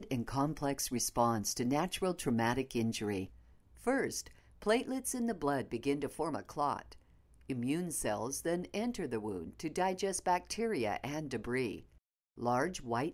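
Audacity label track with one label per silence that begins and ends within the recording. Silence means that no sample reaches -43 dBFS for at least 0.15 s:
3.260000	3.840000	silence
4.270000	4.620000	silence
6.930000	7.490000	silence
11.800000	12.380000	silence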